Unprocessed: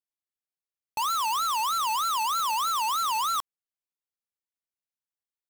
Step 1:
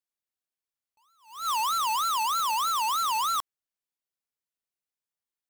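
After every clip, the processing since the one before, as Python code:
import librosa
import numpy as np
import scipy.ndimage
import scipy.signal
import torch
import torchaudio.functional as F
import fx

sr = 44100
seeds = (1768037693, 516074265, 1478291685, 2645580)

y = fx.attack_slew(x, sr, db_per_s=130.0)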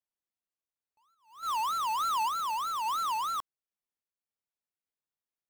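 y = fx.high_shelf(x, sr, hz=2200.0, db=-8.5)
y = fx.tremolo_random(y, sr, seeds[0], hz=3.5, depth_pct=55)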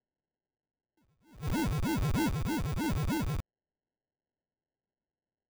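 y = fx.sample_hold(x, sr, seeds[1], rate_hz=1200.0, jitter_pct=0)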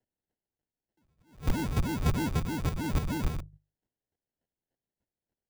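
y = fx.octave_divider(x, sr, octaves=1, level_db=-3.0)
y = fx.hum_notches(y, sr, base_hz=50, count=3)
y = fx.chopper(y, sr, hz=3.4, depth_pct=65, duty_pct=15)
y = F.gain(torch.from_numpy(y), 7.5).numpy()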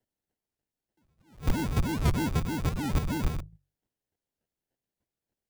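y = fx.record_warp(x, sr, rpm=78.0, depth_cents=160.0)
y = F.gain(torch.from_numpy(y), 1.5).numpy()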